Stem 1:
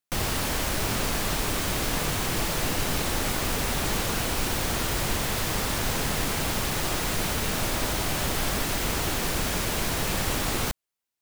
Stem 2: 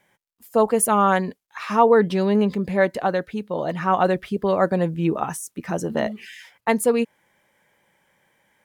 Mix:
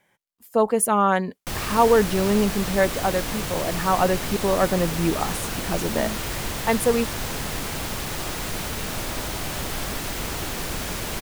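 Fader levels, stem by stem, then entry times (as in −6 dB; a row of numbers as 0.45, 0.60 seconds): −2.0, −1.5 decibels; 1.35, 0.00 seconds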